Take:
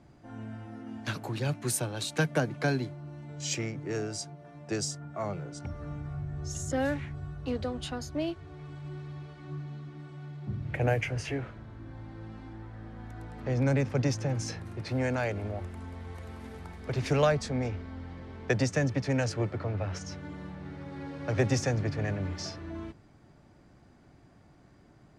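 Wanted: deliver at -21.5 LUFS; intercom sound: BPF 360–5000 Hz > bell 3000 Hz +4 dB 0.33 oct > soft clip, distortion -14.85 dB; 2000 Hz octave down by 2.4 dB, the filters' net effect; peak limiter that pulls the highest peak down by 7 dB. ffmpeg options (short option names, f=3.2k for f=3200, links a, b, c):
-af "equalizer=f=2k:t=o:g=-3.5,alimiter=limit=-21dB:level=0:latency=1,highpass=360,lowpass=5k,equalizer=f=3k:t=o:w=0.33:g=4,asoftclip=threshold=-29.5dB,volume=19.5dB"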